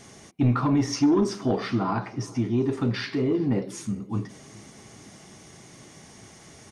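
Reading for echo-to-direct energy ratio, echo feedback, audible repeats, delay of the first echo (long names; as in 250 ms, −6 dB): −22.0 dB, 59%, 3, 396 ms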